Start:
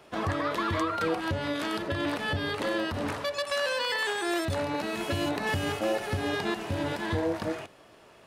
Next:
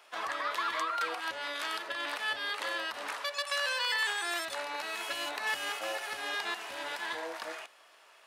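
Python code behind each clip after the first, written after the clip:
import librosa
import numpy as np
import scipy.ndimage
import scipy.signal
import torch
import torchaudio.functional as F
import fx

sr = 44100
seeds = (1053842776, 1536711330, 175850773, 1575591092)

y = scipy.signal.sosfilt(scipy.signal.butter(2, 990.0, 'highpass', fs=sr, output='sos'), x)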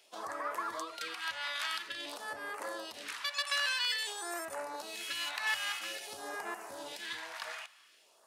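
y = fx.phaser_stages(x, sr, stages=2, low_hz=320.0, high_hz=3500.0, hz=0.5, feedback_pct=25)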